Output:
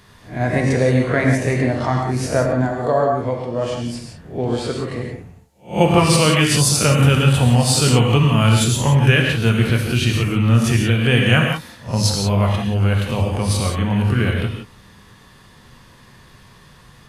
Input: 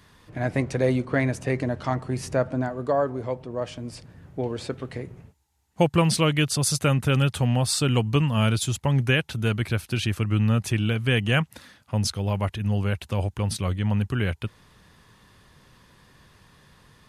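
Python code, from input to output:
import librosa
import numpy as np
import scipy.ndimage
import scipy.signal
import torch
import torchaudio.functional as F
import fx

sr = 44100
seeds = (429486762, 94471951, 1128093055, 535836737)

y = fx.spec_swells(x, sr, rise_s=0.31)
y = fx.rev_gated(y, sr, seeds[0], gate_ms=200, shape='flat', drr_db=0.5)
y = y * librosa.db_to_amplitude(4.0)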